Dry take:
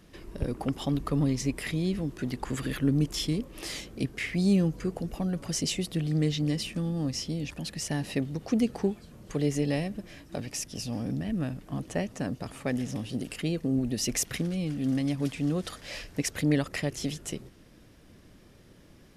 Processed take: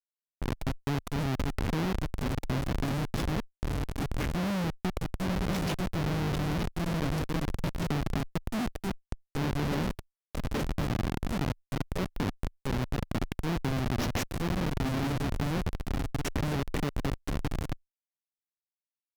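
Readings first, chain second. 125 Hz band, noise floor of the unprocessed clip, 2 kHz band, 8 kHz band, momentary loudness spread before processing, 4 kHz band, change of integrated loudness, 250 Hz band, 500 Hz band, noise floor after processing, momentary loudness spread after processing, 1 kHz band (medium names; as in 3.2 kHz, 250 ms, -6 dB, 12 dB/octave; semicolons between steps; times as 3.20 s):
-0.5 dB, -55 dBFS, +0.5 dB, -9.0 dB, 9 LU, -3.5 dB, -2.0 dB, -4.0 dB, -2.0 dB, under -85 dBFS, 5 LU, +6.5 dB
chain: on a send: echo that smears into a reverb 1066 ms, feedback 46%, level -7 dB; on the sum: Schmitt trigger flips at -26.5 dBFS; level-controlled noise filter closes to 1.1 kHz, open at -32 dBFS; low-pass 6.3 kHz 12 dB/octave; Chebyshev shaper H 4 -11 dB, 6 -8 dB, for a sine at -22.5 dBFS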